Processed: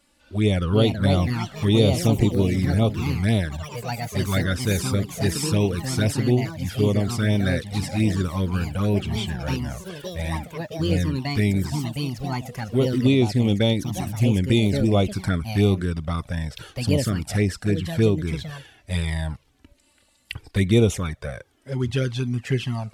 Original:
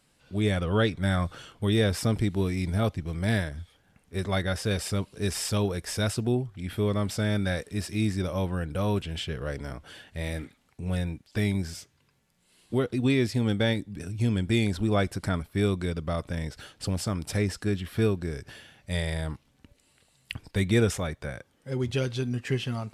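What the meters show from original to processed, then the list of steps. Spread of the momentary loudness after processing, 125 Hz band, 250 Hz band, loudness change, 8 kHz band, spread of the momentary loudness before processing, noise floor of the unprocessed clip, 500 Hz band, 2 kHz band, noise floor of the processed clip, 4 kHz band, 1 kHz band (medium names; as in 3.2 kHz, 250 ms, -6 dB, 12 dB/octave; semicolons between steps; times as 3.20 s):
11 LU, +6.5 dB, +6.0 dB, +5.5 dB, +4.5 dB, 12 LU, -67 dBFS, +5.0 dB, +2.5 dB, -61 dBFS, +5.0 dB, +4.0 dB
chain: ever faster or slower copies 453 ms, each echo +4 st, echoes 3, each echo -6 dB; touch-sensitive flanger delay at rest 3.5 ms, full sweep at -20 dBFS; trim +6 dB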